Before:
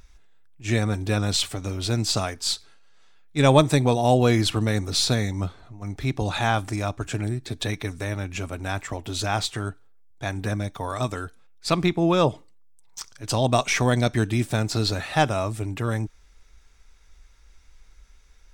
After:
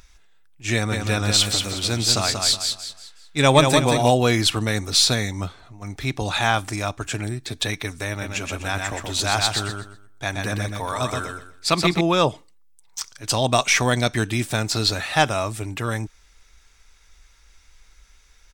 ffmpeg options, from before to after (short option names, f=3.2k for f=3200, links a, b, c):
-filter_complex "[0:a]asplit=3[a][b][c];[a]afade=t=out:st=0.91:d=0.02[d];[b]aecho=1:1:184|368|552|736:0.562|0.191|0.065|0.0221,afade=t=in:st=0.91:d=0.02,afade=t=out:st=4.09:d=0.02[e];[c]afade=t=in:st=4.09:d=0.02[f];[d][e][f]amix=inputs=3:normalize=0,asettb=1/sr,asplit=3[g][h][i];[g]atrim=end=8.094[j];[h]atrim=start=8.09:end=12.01,asetpts=PTS-STARTPTS,afade=t=in:d=0.004:c=qsin,afade=t=out:st=3.916:d=0.004:c=qsin,aecho=1:1:125|250|375|500:0.631|0.164|0.0427|0.0111,atrim=end_sample=172872[k];[i]atrim=start=12.006[l];[j][k]acrossfade=d=0.004:c1=hsin:c2=qsin[m];[m][l]acrossfade=d=0.004:c1=qsin:c2=hsin,tiltshelf=f=870:g=-4,volume=2.5dB"